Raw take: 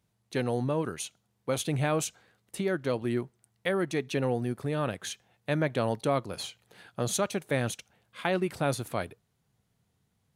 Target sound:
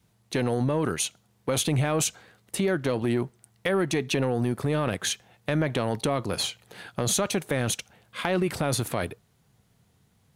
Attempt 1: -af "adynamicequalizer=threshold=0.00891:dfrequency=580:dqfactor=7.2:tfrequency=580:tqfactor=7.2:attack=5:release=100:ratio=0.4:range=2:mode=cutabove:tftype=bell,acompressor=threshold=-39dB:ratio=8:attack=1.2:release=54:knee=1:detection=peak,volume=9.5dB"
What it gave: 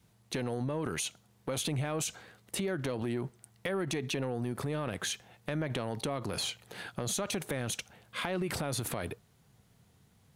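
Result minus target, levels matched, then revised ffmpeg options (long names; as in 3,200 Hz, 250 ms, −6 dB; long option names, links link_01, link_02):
downward compressor: peak gain reduction +9 dB
-af "adynamicequalizer=threshold=0.00891:dfrequency=580:dqfactor=7.2:tfrequency=580:tqfactor=7.2:attack=5:release=100:ratio=0.4:range=2:mode=cutabove:tftype=bell,acompressor=threshold=-29dB:ratio=8:attack=1.2:release=54:knee=1:detection=peak,volume=9.5dB"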